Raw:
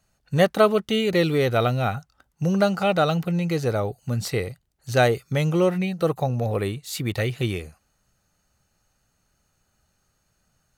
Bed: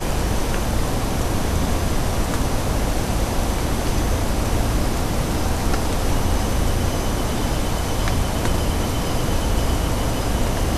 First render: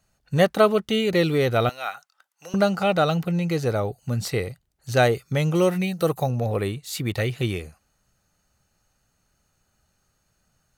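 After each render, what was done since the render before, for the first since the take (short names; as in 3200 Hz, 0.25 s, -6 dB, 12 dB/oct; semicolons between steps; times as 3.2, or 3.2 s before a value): 1.69–2.54 HPF 990 Hz; 5.54–6.3 high shelf 4600 Hz -> 6800 Hz +10.5 dB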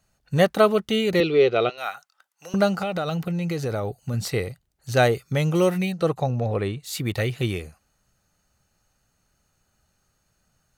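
1.2–1.78 speaker cabinet 220–4800 Hz, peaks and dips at 250 Hz -6 dB, 400 Hz +9 dB, 910 Hz -7 dB, 1700 Hz -7 dB, 2600 Hz +5 dB; 2.74–4.14 compressor, threshold -22 dBFS; 5.92–6.8 air absorption 76 m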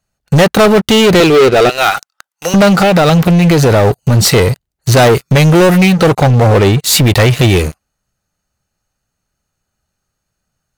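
in parallel at +1 dB: compressor 6:1, threshold -27 dBFS, peak gain reduction 14.5 dB; on the sum: sample leveller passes 5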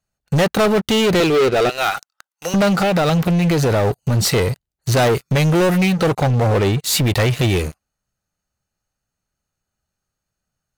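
gain -8 dB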